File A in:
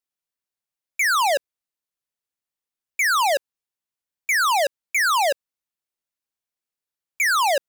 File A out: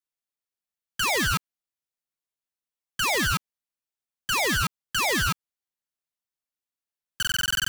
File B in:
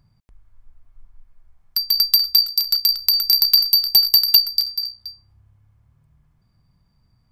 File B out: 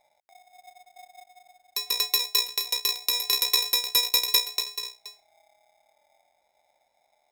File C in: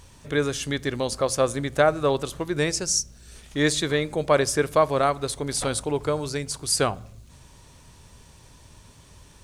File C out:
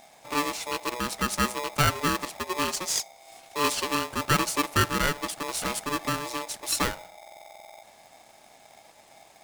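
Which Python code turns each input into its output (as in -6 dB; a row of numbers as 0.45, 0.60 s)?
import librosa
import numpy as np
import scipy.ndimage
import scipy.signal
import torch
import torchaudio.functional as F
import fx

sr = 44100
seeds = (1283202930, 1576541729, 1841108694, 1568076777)

y = fx.buffer_glitch(x, sr, at_s=(7.18,), block=2048, repeats=13)
y = y * np.sign(np.sin(2.0 * np.pi * 730.0 * np.arange(len(y)) / sr))
y = y * 10.0 ** (-30 / 20.0) / np.sqrt(np.mean(np.square(y)))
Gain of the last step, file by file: -4.5, -8.5, -4.0 dB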